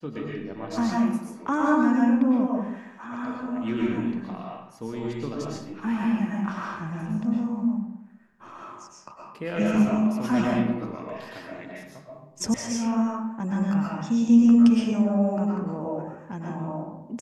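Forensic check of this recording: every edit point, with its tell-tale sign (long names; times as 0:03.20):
0:12.54: cut off before it has died away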